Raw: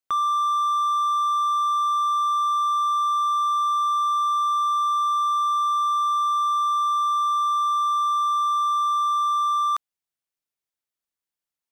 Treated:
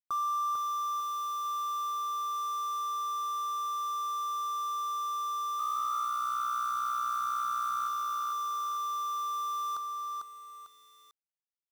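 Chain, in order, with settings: Chebyshev band-stop 1.4–4.1 kHz, order 3; 5.43–7.88 s: frequency-shifting echo 163 ms, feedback 56%, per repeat +62 Hz, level -7.5 dB; bit crusher 7-bit; bit-crushed delay 448 ms, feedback 35%, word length 8-bit, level -4 dB; trim -8 dB

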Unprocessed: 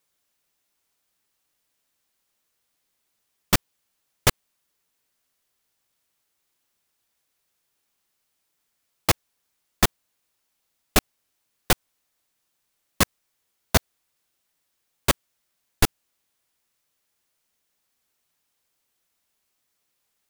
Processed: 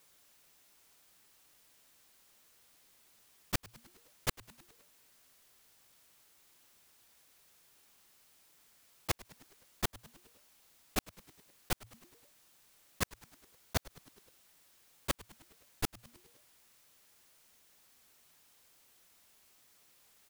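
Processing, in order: slow attack 273 ms; in parallel at 0 dB: level held to a coarse grid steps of 16 dB; on the sum: frequency-shifting echo 103 ms, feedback 63%, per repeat -120 Hz, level -20.5 dB; trim +5.5 dB

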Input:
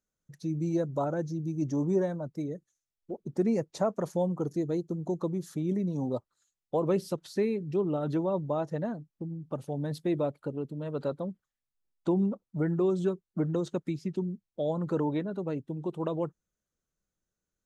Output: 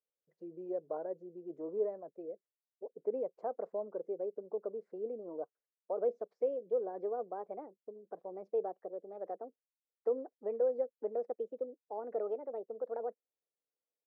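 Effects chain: gliding tape speed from 106% -> 145%; ladder band-pass 530 Hz, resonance 60%

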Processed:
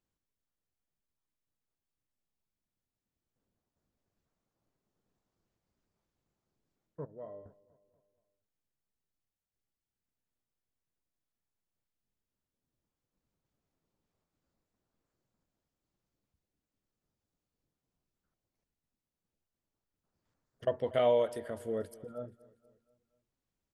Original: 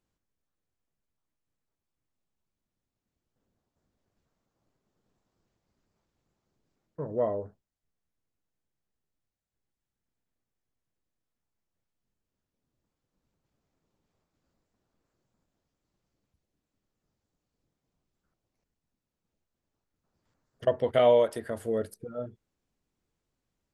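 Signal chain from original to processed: 7.05–7.46 s: feedback comb 150 Hz, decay 1.5 s, mix 80%; on a send: feedback delay 239 ms, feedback 52%, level -21 dB; on the sum: trim -6 dB

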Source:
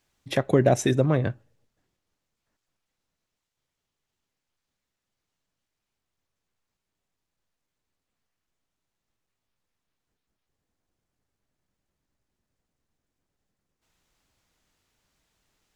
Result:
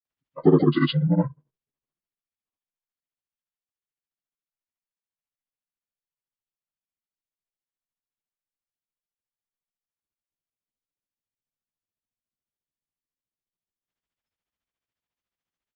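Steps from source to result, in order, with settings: frequency axis rescaled in octaves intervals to 77%; granulator 100 ms, grains 14 per s, spray 100 ms; spectral noise reduction 22 dB; trim +6 dB

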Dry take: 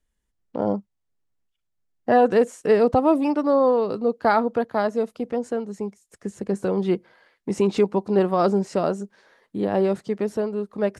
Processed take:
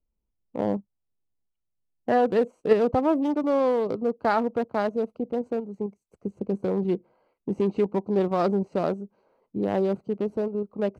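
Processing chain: local Wiener filter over 25 samples; 5.81–6.27 s: treble shelf 5.1 kHz +5.5 dB; in parallel at +2 dB: level held to a coarse grid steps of 14 dB; on the sum: trim -6.5 dB

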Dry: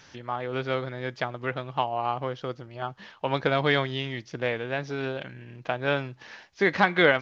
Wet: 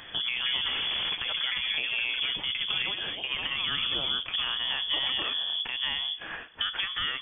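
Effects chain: octave divider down 2 oct, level +3 dB; compression 10:1, threshold -33 dBFS, peak gain reduction 19 dB; ever faster or slower copies 260 ms, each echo +6 st, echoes 2, each echo -6 dB; peak limiter -27 dBFS, peak gain reduction 10 dB; spring tank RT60 1.6 s, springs 35 ms, chirp 25 ms, DRR 18.5 dB; 0.68–1.15 s: Schmitt trigger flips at -53.5 dBFS; 3.15–3.57 s: high-pass 140 Hz; frequency inversion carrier 3.4 kHz; trim +7.5 dB

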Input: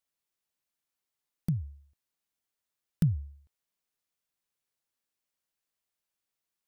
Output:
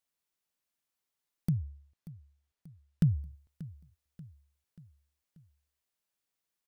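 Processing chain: 1.54–3.03 s: treble shelf 8.2 kHz -11 dB; feedback delay 585 ms, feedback 52%, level -18 dB

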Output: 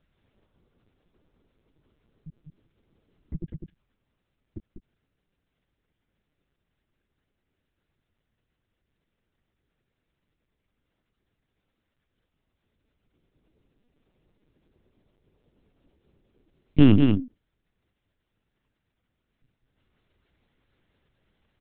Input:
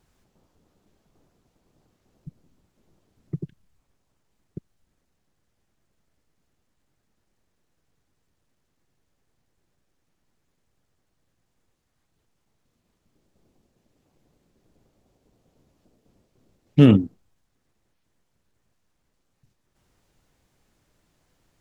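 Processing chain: high-pass 94 Hz 6 dB/octave; peaking EQ 780 Hz -6.5 dB 1.4 oct; delay 199 ms -5 dB; LPC vocoder at 8 kHz pitch kept

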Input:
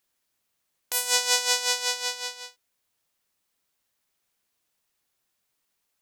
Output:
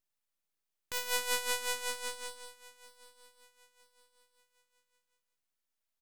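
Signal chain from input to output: on a send: feedback delay 962 ms, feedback 34%, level -20.5 dB; on the sum: full-wave rectifier; trim -9 dB

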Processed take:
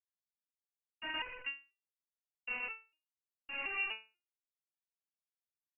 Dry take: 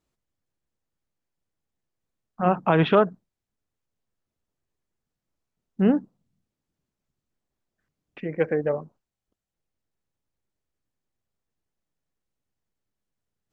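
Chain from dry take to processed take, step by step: high-pass 80 Hz 12 dB/octave; reverse; compression 6:1, threshold -30 dBFS, peak gain reduction 16.5 dB; reverse; fuzz box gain 52 dB, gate -55 dBFS; frequency shift -180 Hz; Schmitt trigger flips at -30 dBFS; on a send: loudspeakers at several distances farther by 35 m -7 dB, 98 m -1 dB; on the sum: speed mistake 33 rpm record played at 78 rpm; frequency inversion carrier 2.8 kHz; resonator arpeggio 4.1 Hz 220–500 Hz; trim -1.5 dB

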